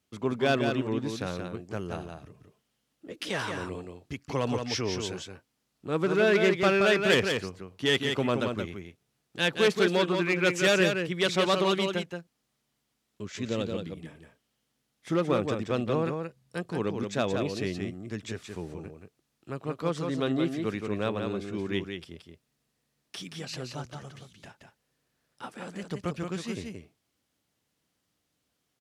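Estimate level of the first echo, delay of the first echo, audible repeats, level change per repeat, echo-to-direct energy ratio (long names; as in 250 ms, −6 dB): −5.5 dB, 175 ms, 1, repeats not evenly spaced, −5.5 dB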